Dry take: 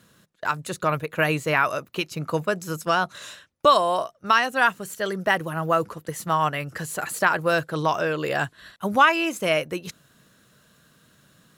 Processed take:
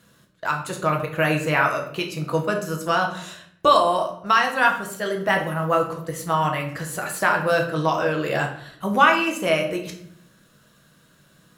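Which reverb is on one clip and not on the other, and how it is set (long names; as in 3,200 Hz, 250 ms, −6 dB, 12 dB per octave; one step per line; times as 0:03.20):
rectangular room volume 120 cubic metres, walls mixed, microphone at 0.68 metres
level −1 dB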